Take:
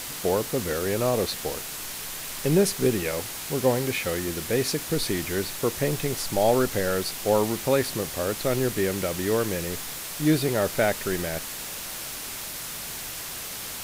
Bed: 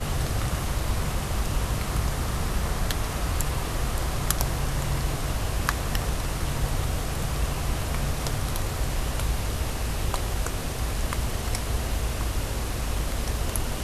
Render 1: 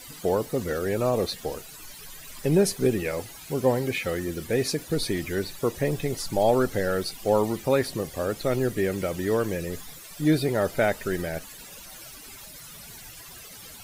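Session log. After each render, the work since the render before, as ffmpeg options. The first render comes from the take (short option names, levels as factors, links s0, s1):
-af "afftdn=nr=15:nf=-36"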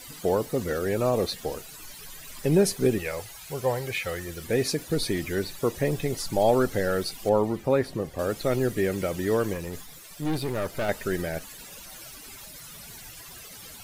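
-filter_complex "[0:a]asettb=1/sr,asplit=3[s0][s1][s2];[s0]atrim=end=2.984[s3];[s1]atrim=start=2.98:end=4.44,asetpts=PTS-STARTPTS,afade=t=in:d=0.004:c=qsin,afade=t=out:st=1.456:d=0.004:c=qsin,equalizer=f=260:w=1.3:g=-13.5[s4];[s2]atrim=start=4.436[s5];[s3][s4]acrossfade=d=0.004:c1=hsin:c2=qsin[s6];[s6][s5]acrossfade=d=0.004:c1=qsin:c2=hsin,asettb=1/sr,asplit=3[s7][s8][s9];[s7]atrim=end=7.294[s10];[s8]atrim=start=7.29:end=8.19,asetpts=PTS-STARTPTS,afade=t=in:d=0.004:c=qsin,afade=t=out:st=0.896:d=0.004:c=qsin,highshelf=f=2700:g=-11[s11];[s9]atrim=start=8.186[s12];[s10][s11]acrossfade=d=0.004:c1=hsin:c2=qsin[s13];[s13][s12]acrossfade=d=0.004:c1=qsin:c2=hsin,asettb=1/sr,asplit=3[s14][s15][s16];[s14]atrim=end=9.534[s17];[s15]atrim=start=9.53:end=10.89,asetpts=PTS-STARTPTS,afade=t=in:d=0.004:c=qsin,afade=t=out:st=1.356:d=0.004:c=qsin,aeval=exprs='(tanh(15.8*val(0)+0.55)-tanh(0.55))/15.8':c=same[s18];[s16]atrim=start=10.886[s19];[s17][s18]acrossfade=d=0.004:c1=hsin:c2=qsin[s20];[s20][s19]acrossfade=d=0.004:c1=qsin:c2=hsin"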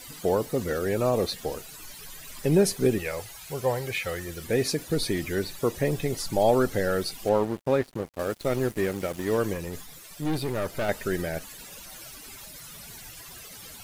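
-filter_complex "[0:a]asettb=1/sr,asplit=3[s0][s1][s2];[s0]atrim=end=7.274[s3];[s1]atrim=start=7.27:end=9.38,asetpts=PTS-STARTPTS,afade=t=in:d=0.004:c=qsin,afade=t=out:st=2.106:d=0.004:c=qsin,aeval=exprs='sgn(val(0))*max(abs(val(0))-0.0133,0)':c=same[s4];[s2]atrim=start=9.376[s5];[s3][s4]acrossfade=d=0.004:c1=hsin:c2=qsin[s6];[s6][s5]acrossfade=d=0.004:c1=qsin:c2=hsin"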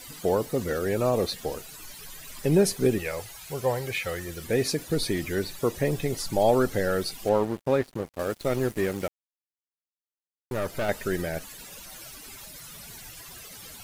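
-filter_complex "[0:a]asplit=3[s0][s1][s2];[s0]atrim=end=9.08,asetpts=PTS-STARTPTS,afade=t=out:st=9.076:d=0.004:c=hsin[s3];[s1]atrim=start=9.08:end=10.51,asetpts=PTS-STARTPTS,volume=0[s4];[s2]atrim=start=10.51,asetpts=PTS-STARTPTS,afade=t=in:d=0.004:c=hsin[s5];[s3][s4][s5]concat=n=3:v=0:a=1"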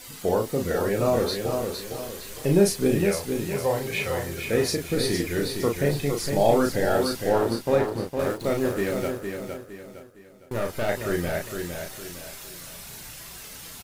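-filter_complex "[0:a]asplit=2[s0][s1];[s1]adelay=35,volume=0.631[s2];[s0][s2]amix=inputs=2:normalize=0,asplit=2[s3][s4];[s4]aecho=0:1:460|920|1380|1840:0.501|0.185|0.0686|0.0254[s5];[s3][s5]amix=inputs=2:normalize=0"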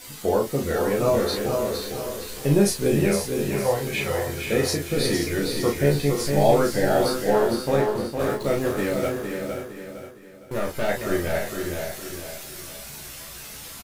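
-filter_complex "[0:a]asplit=2[s0][s1];[s1]adelay=14,volume=0.668[s2];[s0][s2]amix=inputs=2:normalize=0,aecho=1:1:529:0.376"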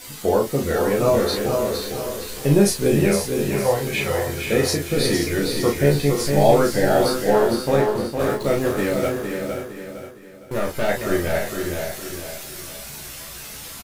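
-af "volume=1.41"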